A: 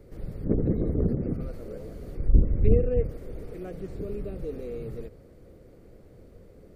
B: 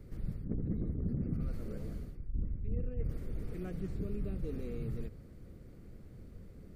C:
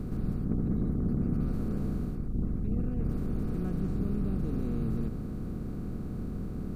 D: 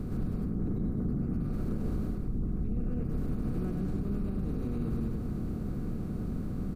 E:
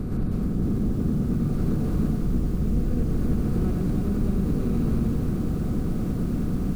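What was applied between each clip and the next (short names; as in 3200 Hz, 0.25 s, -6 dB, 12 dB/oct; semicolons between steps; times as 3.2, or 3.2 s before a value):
EQ curve 210 Hz 0 dB, 520 Hz -12 dB, 1300 Hz -4 dB; reverse; compressor 20:1, threshold -32 dBFS, peak gain reduction 22 dB; reverse; gain +1.5 dB
per-bin compression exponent 0.4; graphic EQ 250/500/1000/2000 Hz +6/-7/+10/-8 dB
on a send: echo 0.101 s -4 dB; on the sum: limiter -24 dBFS, peak gain reduction 7.5 dB
lo-fi delay 0.313 s, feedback 80%, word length 9-bit, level -7 dB; gain +6.5 dB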